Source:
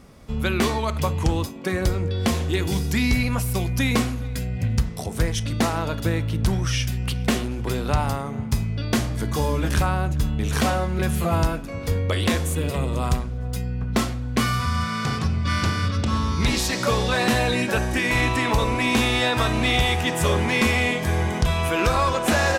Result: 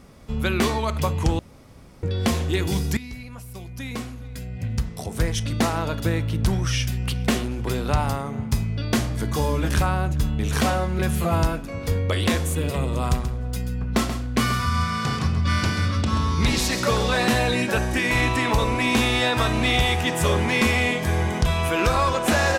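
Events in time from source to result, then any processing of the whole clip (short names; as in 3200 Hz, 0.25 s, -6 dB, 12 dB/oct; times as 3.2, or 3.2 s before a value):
1.39–2.03 room tone
2.97–5.32 fade in quadratic, from -16.5 dB
13.1–17.25 echo 0.133 s -10 dB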